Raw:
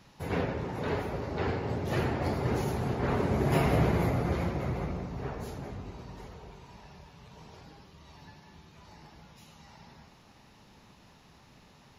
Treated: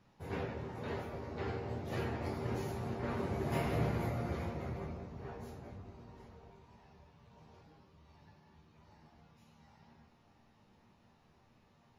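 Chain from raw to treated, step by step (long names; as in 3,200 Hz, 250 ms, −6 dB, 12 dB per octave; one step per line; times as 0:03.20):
resonators tuned to a chord D#2 major, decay 0.21 s
one half of a high-frequency compander decoder only
level +1 dB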